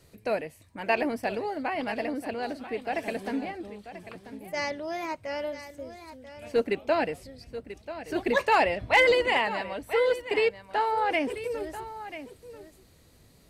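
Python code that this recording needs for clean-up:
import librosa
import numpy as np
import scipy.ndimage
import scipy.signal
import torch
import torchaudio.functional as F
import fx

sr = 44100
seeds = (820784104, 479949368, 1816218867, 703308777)

y = fx.fix_declip(x, sr, threshold_db=-12.5)
y = fx.fix_echo_inverse(y, sr, delay_ms=988, level_db=-13.0)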